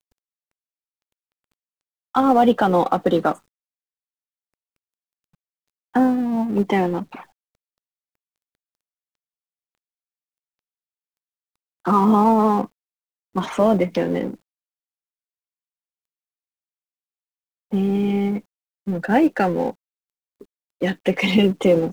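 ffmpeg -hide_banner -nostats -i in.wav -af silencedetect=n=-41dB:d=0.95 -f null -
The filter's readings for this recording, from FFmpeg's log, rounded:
silence_start: 0.00
silence_end: 2.15 | silence_duration: 2.15
silence_start: 3.38
silence_end: 5.94 | silence_duration: 2.56
silence_start: 7.24
silence_end: 11.85 | silence_duration: 4.61
silence_start: 14.36
silence_end: 17.71 | silence_duration: 3.36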